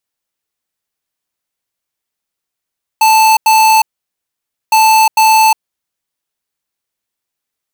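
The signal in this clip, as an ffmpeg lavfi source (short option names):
-f lavfi -i "aevalsrc='0.422*(2*lt(mod(879*t,1),0.5)-1)*clip(min(mod(mod(t,1.71),0.45),0.36-mod(mod(t,1.71),0.45))/0.005,0,1)*lt(mod(t,1.71),0.9)':d=3.42:s=44100"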